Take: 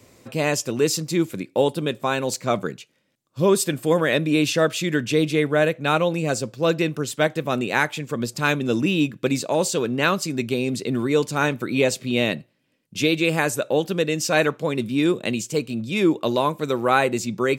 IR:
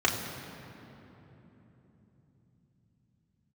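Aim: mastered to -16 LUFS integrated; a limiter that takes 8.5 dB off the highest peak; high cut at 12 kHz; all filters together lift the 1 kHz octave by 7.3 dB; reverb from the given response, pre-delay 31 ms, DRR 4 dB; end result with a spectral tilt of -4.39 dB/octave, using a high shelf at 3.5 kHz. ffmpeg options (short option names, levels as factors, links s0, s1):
-filter_complex "[0:a]lowpass=12000,equalizer=f=1000:t=o:g=9,highshelf=f=3500:g=4.5,alimiter=limit=0.398:level=0:latency=1,asplit=2[s0][s1];[1:a]atrim=start_sample=2205,adelay=31[s2];[s1][s2]afir=irnorm=-1:irlink=0,volume=0.141[s3];[s0][s3]amix=inputs=2:normalize=0,volume=1.58"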